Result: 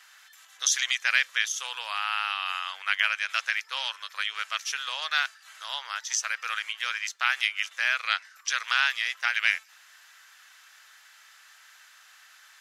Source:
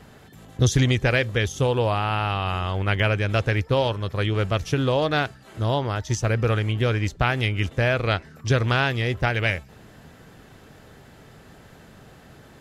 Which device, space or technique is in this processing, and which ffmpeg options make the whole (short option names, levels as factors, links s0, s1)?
headphones lying on a table: -af "highpass=f=1300:w=0.5412,highpass=f=1300:w=1.3066,equalizer=f=6000:t=o:w=0.52:g=5,volume=1.19"